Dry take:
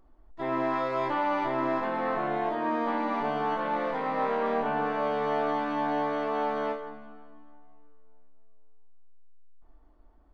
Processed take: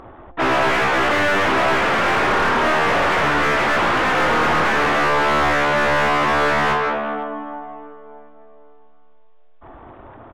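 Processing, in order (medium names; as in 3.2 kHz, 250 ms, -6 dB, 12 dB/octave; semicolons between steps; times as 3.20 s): peaking EQ 65 Hz +14 dB 0.36 oct; full-wave rectifier; resampled via 8 kHz; overdrive pedal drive 31 dB, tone 1.3 kHz, clips at -16 dBFS; trim +8 dB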